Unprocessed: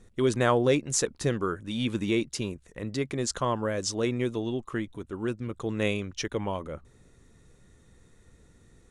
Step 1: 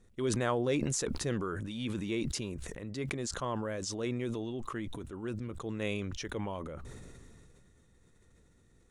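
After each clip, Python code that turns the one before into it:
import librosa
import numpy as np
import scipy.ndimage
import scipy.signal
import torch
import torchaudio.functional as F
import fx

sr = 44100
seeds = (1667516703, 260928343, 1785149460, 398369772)

y = fx.sustainer(x, sr, db_per_s=21.0)
y = y * 10.0 ** (-8.5 / 20.0)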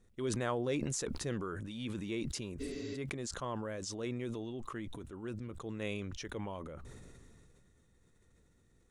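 y = fx.spec_repair(x, sr, seeds[0], start_s=2.63, length_s=0.3, low_hz=210.0, high_hz=7500.0, source='after')
y = y * 10.0 ** (-4.0 / 20.0)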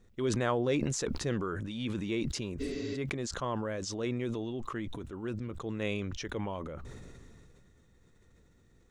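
y = fx.peak_eq(x, sr, hz=9700.0, db=-10.0, octaves=0.58)
y = y * 10.0 ** (5.0 / 20.0)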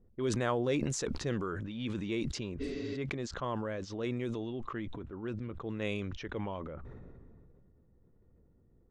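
y = fx.env_lowpass(x, sr, base_hz=630.0, full_db=-28.0)
y = y * 10.0 ** (-1.5 / 20.0)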